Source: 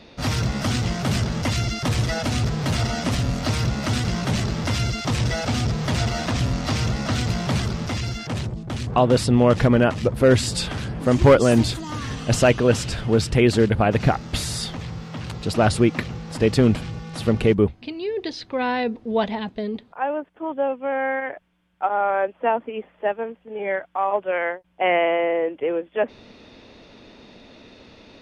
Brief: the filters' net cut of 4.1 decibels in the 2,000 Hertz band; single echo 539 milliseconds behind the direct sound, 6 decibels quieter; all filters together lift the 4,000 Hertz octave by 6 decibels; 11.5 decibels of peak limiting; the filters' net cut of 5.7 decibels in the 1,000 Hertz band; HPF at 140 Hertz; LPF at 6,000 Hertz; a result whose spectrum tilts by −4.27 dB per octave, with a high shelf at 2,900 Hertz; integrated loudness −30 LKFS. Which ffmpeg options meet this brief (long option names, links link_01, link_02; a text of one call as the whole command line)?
ffmpeg -i in.wav -af "highpass=140,lowpass=6000,equalizer=frequency=1000:width_type=o:gain=-8,equalizer=frequency=2000:width_type=o:gain=-7,highshelf=frequency=2900:gain=6.5,equalizer=frequency=4000:width_type=o:gain=5.5,alimiter=limit=-15dB:level=0:latency=1,aecho=1:1:539:0.501,volume=-4.5dB" out.wav